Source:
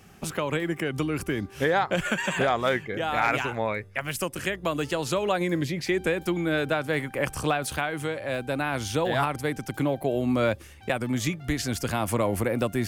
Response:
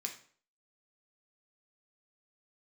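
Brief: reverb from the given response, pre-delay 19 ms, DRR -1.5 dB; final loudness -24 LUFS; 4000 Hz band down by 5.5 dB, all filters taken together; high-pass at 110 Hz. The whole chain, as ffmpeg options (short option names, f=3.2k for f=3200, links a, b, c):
-filter_complex "[0:a]highpass=110,equalizer=f=4k:t=o:g=-7.5,asplit=2[a][b];[1:a]atrim=start_sample=2205,adelay=19[c];[b][c]afir=irnorm=-1:irlink=0,volume=2dB[d];[a][d]amix=inputs=2:normalize=0,volume=1dB"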